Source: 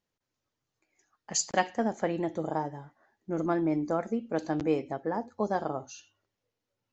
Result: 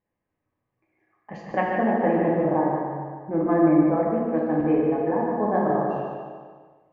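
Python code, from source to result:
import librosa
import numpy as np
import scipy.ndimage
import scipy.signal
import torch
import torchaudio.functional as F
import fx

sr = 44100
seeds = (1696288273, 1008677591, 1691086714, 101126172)

y = scipy.signal.sosfilt(scipy.signal.butter(4, 2100.0, 'lowpass', fs=sr, output='sos'), x)
y = fx.notch(y, sr, hz=1400.0, q=5.2)
y = fx.echo_feedback(y, sr, ms=149, feedback_pct=47, wet_db=-5.5)
y = fx.rev_plate(y, sr, seeds[0], rt60_s=1.4, hf_ratio=0.65, predelay_ms=0, drr_db=-2.0)
y = fx.rider(y, sr, range_db=10, speed_s=2.0)
y = y * 10.0 ** (2.0 / 20.0)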